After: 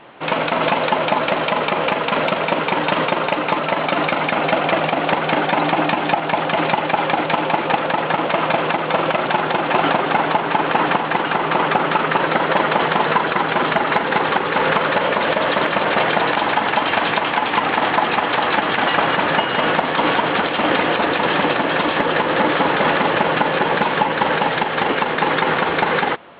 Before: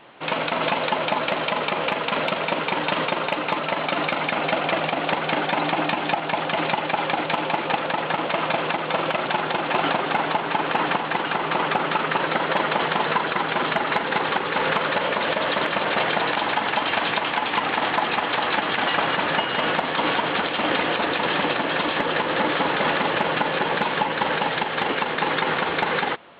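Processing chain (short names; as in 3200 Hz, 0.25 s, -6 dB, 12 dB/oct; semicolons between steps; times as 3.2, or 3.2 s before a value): high shelf 4100 Hz -10 dB; gain +6 dB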